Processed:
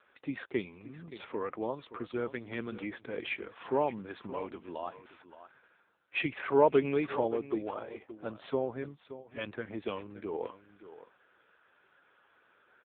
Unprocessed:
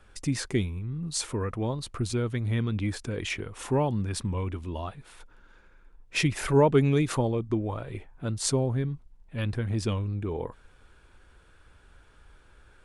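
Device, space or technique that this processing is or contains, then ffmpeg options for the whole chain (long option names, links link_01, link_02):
satellite phone: -af "highpass=380,lowpass=3400,aecho=1:1:573:0.2" -ar 8000 -c:a libopencore_amrnb -b:a 6700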